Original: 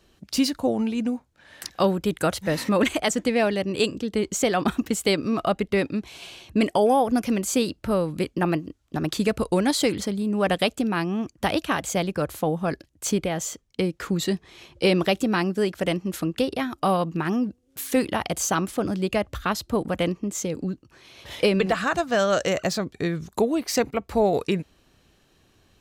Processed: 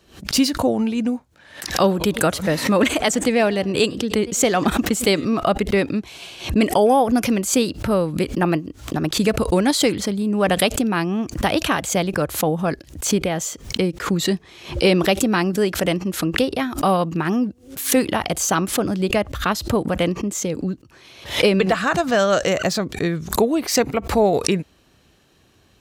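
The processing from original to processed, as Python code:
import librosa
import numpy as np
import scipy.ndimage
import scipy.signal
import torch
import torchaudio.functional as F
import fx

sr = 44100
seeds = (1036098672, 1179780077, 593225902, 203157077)

y = fx.echo_warbled(x, sr, ms=101, feedback_pct=49, rate_hz=2.8, cents=193, wet_db=-24, at=(1.63, 5.25))
y = scipy.signal.sosfilt(scipy.signal.butter(2, 45.0, 'highpass', fs=sr, output='sos'), y)
y = fx.pre_swell(y, sr, db_per_s=130.0)
y = F.gain(torch.from_numpy(y), 4.0).numpy()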